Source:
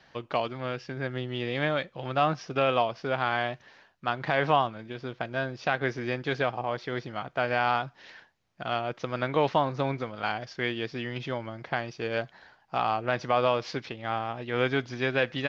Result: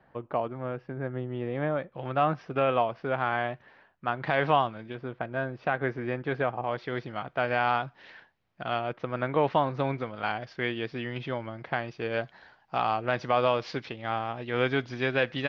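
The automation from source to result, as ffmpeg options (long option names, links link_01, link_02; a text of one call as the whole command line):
ffmpeg -i in.wav -af "asetnsamples=nb_out_samples=441:pad=0,asendcmd='1.92 lowpass f 2200;4.23 lowpass f 3800;4.95 lowpass f 1900;6.63 lowpass f 3500;8.93 lowpass f 2200;9.5 lowpass f 3400;12.23 lowpass f 5000',lowpass=1200" out.wav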